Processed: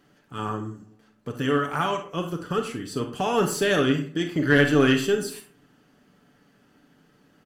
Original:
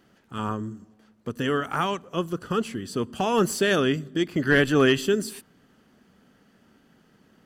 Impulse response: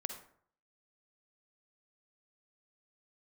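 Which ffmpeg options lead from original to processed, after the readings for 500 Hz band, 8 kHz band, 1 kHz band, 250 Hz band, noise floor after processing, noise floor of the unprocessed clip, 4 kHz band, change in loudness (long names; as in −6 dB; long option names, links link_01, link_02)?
0.0 dB, 0.0 dB, +0.5 dB, +1.0 dB, −62 dBFS, −61 dBFS, 0.0 dB, +0.5 dB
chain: -filter_complex "[0:a]aecho=1:1:6.9:0.43,asplit=2[link_01][link_02];[link_02]aeval=exprs='clip(val(0),-1,0.106)':channel_layout=same,volume=-7dB[link_03];[link_01][link_03]amix=inputs=2:normalize=0[link_04];[1:a]atrim=start_sample=2205,asetrate=61740,aresample=44100[link_05];[link_04][link_05]afir=irnorm=-1:irlink=0"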